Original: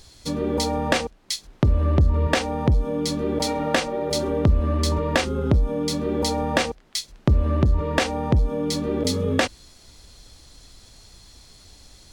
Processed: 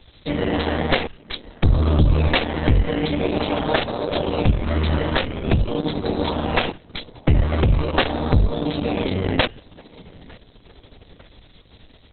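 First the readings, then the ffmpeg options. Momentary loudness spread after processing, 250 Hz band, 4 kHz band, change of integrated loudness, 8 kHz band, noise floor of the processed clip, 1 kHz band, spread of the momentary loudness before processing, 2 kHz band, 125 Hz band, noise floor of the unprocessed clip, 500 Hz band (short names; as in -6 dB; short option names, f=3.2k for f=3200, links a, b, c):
6 LU, +1.5 dB, +1.5 dB, +1.5 dB, under -40 dB, -51 dBFS, +2.0 dB, 5 LU, +2.5 dB, +2.0 dB, -51 dBFS, +1.0 dB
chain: -filter_complex "[0:a]bandreject=f=402.1:t=h:w=4,bandreject=f=804.2:t=h:w=4,bandreject=f=1.2063k:t=h:w=4,bandreject=f=1.6084k:t=h:w=4,bandreject=f=2.0105k:t=h:w=4,bandreject=f=2.4126k:t=h:w=4,bandreject=f=2.8147k:t=h:w=4,bandreject=f=3.2168k:t=h:w=4,bandreject=f=3.6189k:t=h:w=4,bandreject=f=4.021k:t=h:w=4,bandreject=f=4.4231k:t=h:w=4,bandreject=f=4.8252k:t=h:w=4,bandreject=f=5.2273k:t=h:w=4,bandreject=f=5.6294k:t=h:w=4,bandreject=f=6.0315k:t=h:w=4,bandreject=f=6.4336k:t=h:w=4,bandreject=f=6.8357k:t=h:w=4,bandreject=f=7.2378k:t=h:w=4,bandreject=f=7.6399k:t=h:w=4,bandreject=f=8.042k:t=h:w=4,bandreject=f=8.4441k:t=h:w=4,bandreject=f=8.8462k:t=h:w=4,bandreject=f=9.2483k:t=h:w=4,bandreject=f=9.6504k:t=h:w=4,bandreject=f=10.0525k:t=h:w=4,bandreject=f=10.4546k:t=h:w=4,aeval=exprs='0.398*(cos(1*acos(clip(val(0)/0.398,-1,1)))-cos(1*PI/2))+0.0316*(cos(2*acos(clip(val(0)/0.398,-1,1)))-cos(2*PI/2))+0.178*(cos(4*acos(clip(val(0)/0.398,-1,1)))-cos(4*PI/2))+0.0631*(cos(5*acos(clip(val(0)/0.398,-1,1)))-cos(5*PI/2))+0.0158*(cos(7*acos(clip(val(0)/0.398,-1,1)))-cos(7*PI/2))':c=same,acrossover=split=130|1300[a][b][c];[b]acrusher=samples=14:mix=1:aa=0.000001:lfo=1:lforange=8.4:lforate=0.45[d];[a][d][c]amix=inputs=3:normalize=0,asplit=2[e][f];[f]adelay=903,lowpass=f=4k:p=1,volume=-22dB,asplit=2[g][h];[h]adelay=903,lowpass=f=4k:p=1,volume=0.48,asplit=2[i][j];[j]adelay=903,lowpass=f=4k:p=1,volume=0.48[k];[e][g][i][k]amix=inputs=4:normalize=0" -ar 48000 -c:a libopus -b:a 6k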